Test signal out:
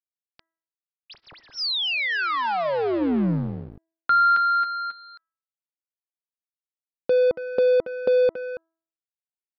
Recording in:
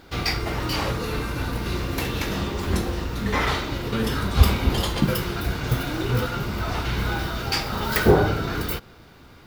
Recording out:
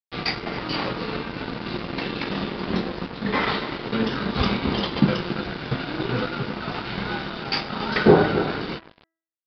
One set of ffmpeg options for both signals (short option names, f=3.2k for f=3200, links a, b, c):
-filter_complex "[0:a]lowshelf=f=120:t=q:w=1.5:g=-11.5,asplit=2[a][b];[b]adelay=279,lowpass=f=2k:p=1,volume=-9dB,asplit=2[c][d];[d]adelay=279,lowpass=f=2k:p=1,volume=0.19,asplit=2[e][f];[f]adelay=279,lowpass=f=2k:p=1,volume=0.19[g];[c][e][g]amix=inputs=3:normalize=0[h];[a][h]amix=inputs=2:normalize=0,aeval=exprs='sgn(val(0))*max(abs(val(0))-0.0237,0)':c=same,bandreject=f=327.1:t=h:w=4,bandreject=f=654.2:t=h:w=4,bandreject=f=981.3:t=h:w=4,bandreject=f=1.3084k:t=h:w=4,bandreject=f=1.6355k:t=h:w=4,bandreject=f=1.9626k:t=h:w=4,aresample=11025,aresample=44100,volume=2.5dB"